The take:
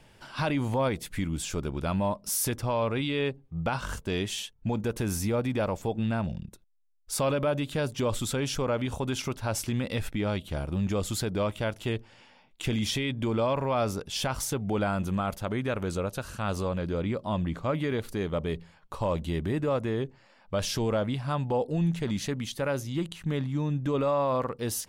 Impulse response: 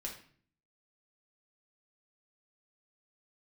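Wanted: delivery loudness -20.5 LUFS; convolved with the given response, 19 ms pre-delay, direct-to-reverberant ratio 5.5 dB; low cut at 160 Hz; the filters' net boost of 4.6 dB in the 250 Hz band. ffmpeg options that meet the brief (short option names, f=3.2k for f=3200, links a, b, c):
-filter_complex "[0:a]highpass=160,equalizer=f=250:t=o:g=7,asplit=2[a][b];[1:a]atrim=start_sample=2205,adelay=19[c];[b][c]afir=irnorm=-1:irlink=0,volume=-4.5dB[d];[a][d]amix=inputs=2:normalize=0,volume=6.5dB"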